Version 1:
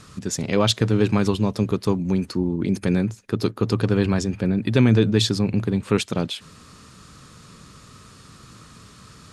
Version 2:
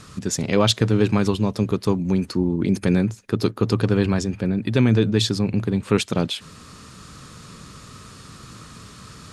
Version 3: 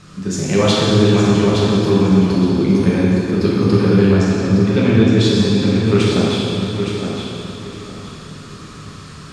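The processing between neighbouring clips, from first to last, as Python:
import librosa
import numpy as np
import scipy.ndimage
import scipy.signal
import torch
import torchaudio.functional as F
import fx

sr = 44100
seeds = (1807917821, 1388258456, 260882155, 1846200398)

y1 = fx.rider(x, sr, range_db=5, speed_s=2.0)
y2 = fx.air_absorb(y1, sr, metres=51.0)
y2 = fx.echo_feedback(y2, sr, ms=865, feedback_pct=25, wet_db=-7.0)
y2 = fx.rev_plate(y2, sr, seeds[0], rt60_s=2.7, hf_ratio=0.95, predelay_ms=0, drr_db=-6.5)
y2 = y2 * 10.0 ** (-1.5 / 20.0)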